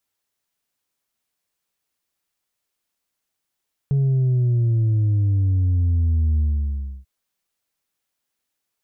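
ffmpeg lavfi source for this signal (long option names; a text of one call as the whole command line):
ffmpeg -f lavfi -i "aevalsrc='0.158*clip((3.14-t)/0.66,0,1)*tanh(1.33*sin(2*PI*140*3.14/log(65/140)*(exp(log(65/140)*t/3.14)-1)))/tanh(1.33)':duration=3.14:sample_rate=44100" out.wav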